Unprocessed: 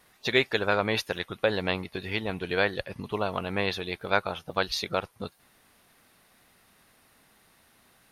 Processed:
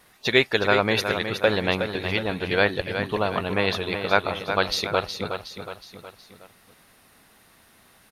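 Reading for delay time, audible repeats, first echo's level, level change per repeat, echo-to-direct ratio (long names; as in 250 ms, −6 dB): 367 ms, 4, −8.0 dB, −6.0 dB, −7.0 dB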